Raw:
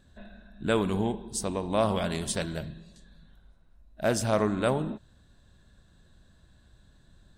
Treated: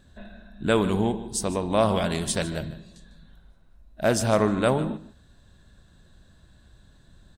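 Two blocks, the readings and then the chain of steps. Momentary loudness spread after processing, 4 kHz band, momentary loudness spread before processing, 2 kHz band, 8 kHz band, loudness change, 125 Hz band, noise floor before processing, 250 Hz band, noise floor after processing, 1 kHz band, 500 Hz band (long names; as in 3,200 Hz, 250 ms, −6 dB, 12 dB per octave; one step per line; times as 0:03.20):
11 LU, +4.0 dB, 11 LU, +4.0 dB, +4.0 dB, +4.0 dB, +4.0 dB, −60 dBFS, +4.0 dB, −56 dBFS, +4.0 dB, +4.0 dB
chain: single-tap delay 150 ms −16.5 dB
level +4 dB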